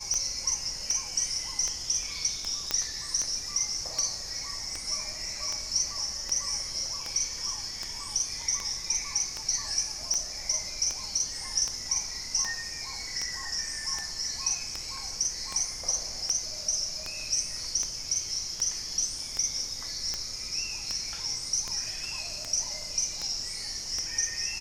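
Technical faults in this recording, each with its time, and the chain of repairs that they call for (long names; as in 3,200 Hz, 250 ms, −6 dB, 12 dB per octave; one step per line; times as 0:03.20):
scratch tick 78 rpm −17 dBFS
0:02.71: click −10 dBFS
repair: click removal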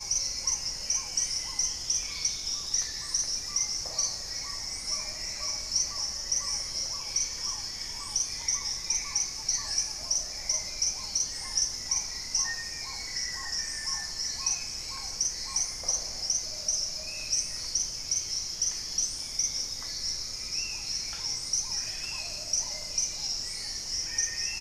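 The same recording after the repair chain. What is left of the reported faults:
none of them is left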